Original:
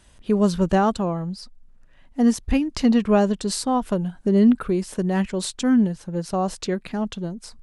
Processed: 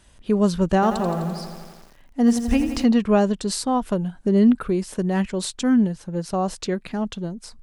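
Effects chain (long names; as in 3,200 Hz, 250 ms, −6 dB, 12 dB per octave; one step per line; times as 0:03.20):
0:00.74–0:02.84: feedback echo at a low word length 85 ms, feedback 80%, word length 7 bits, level −10 dB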